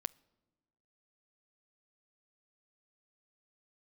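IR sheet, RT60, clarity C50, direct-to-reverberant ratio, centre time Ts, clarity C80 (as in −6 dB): non-exponential decay, 25.5 dB, 19.5 dB, 1 ms, 28.0 dB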